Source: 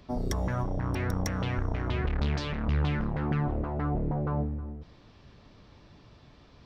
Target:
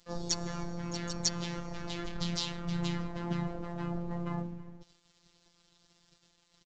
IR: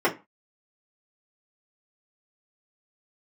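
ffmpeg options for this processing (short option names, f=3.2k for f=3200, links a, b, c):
-filter_complex "[0:a]aexciter=amount=5.5:drive=7.3:freq=3.6k,asplit=4[a][b][c][d];[b]asetrate=35002,aresample=44100,atempo=1.25992,volume=-4dB[e];[c]asetrate=52444,aresample=44100,atempo=0.840896,volume=-8dB[f];[d]asetrate=88200,aresample=44100,atempo=0.5,volume=-7dB[g];[a][e][f][g]amix=inputs=4:normalize=0,aresample=16000,aeval=exprs='sgn(val(0))*max(abs(val(0))-0.00376,0)':c=same,aresample=44100,afftfilt=real='hypot(re,im)*cos(PI*b)':imag='0':win_size=1024:overlap=0.75,volume=-5dB"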